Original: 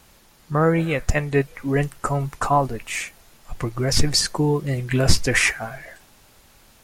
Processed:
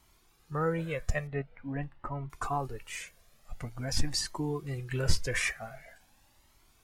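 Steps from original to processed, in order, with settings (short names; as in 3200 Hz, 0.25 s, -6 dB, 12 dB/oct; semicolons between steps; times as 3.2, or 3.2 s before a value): 1.27–2.3 air absorption 420 m; cascading flanger rising 0.46 Hz; gain -8 dB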